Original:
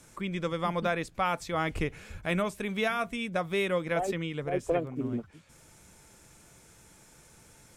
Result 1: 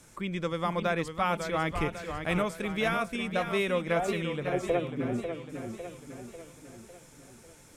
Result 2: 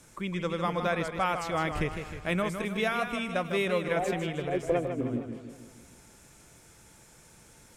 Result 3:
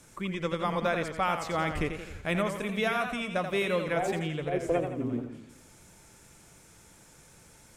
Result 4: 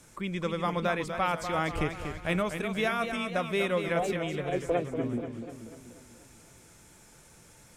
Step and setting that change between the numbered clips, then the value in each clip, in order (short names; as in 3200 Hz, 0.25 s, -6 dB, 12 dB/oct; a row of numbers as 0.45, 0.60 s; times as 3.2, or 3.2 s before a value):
warbling echo, time: 549, 156, 86, 243 ms